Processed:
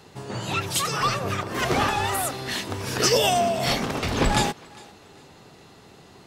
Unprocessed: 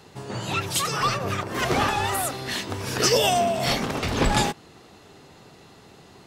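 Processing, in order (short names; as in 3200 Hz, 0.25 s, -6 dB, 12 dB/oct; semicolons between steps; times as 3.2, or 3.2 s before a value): thinning echo 0.404 s, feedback 31%, level -23 dB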